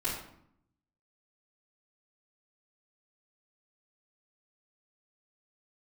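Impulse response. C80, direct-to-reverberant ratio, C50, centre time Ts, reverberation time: 6.5 dB, −10.5 dB, 3.0 dB, 43 ms, 0.70 s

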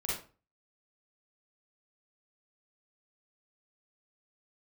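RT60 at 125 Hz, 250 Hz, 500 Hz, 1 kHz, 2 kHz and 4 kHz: 0.45, 0.40, 0.35, 0.35, 0.30, 0.25 seconds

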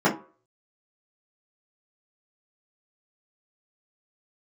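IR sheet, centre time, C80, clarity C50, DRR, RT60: 20 ms, 17.0 dB, 11.5 dB, −8.5 dB, 0.40 s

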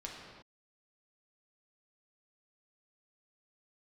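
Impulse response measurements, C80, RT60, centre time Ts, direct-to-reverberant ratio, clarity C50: 3.0 dB, non-exponential decay, 76 ms, −3.0 dB, 1.0 dB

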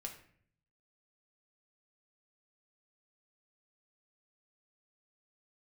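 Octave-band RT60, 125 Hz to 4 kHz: 1.0, 0.85, 0.60, 0.50, 0.60, 0.40 seconds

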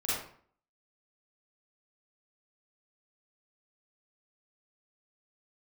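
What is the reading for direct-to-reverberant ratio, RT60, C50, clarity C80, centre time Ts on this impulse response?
−10.0 dB, 0.55 s, −3.0 dB, 3.5 dB, 70 ms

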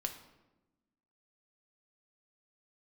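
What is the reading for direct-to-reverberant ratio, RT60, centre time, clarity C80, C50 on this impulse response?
4.5 dB, 1.1 s, 16 ms, 12.0 dB, 9.5 dB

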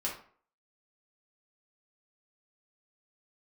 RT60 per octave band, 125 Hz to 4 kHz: 0.45, 0.45, 0.50, 0.50, 0.40, 0.30 seconds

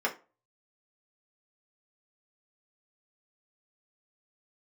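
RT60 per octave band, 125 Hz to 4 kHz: 0.35, 0.30, 0.35, 0.30, 0.25, 0.20 seconds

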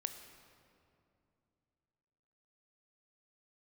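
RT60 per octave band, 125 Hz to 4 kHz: 3.4, 3.2, 2.8, 2.5, 2.0, 1.6 seconds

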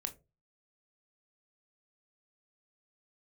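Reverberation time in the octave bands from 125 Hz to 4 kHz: 0.45, 0.30, 0.35, 0.25, 0.20, 0.15 seconds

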